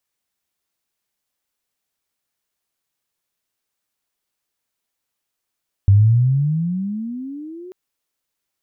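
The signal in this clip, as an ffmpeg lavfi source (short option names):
-f lavfi -i "aevalsrc='pow(10,(-7-26*t/1.84)/20)*sin(2*PI*96.3*1.84/(23.5*log(2)/12)*(exp(23.5*log(2)/12*t/1.84)-1))':d=1.84:s=44100"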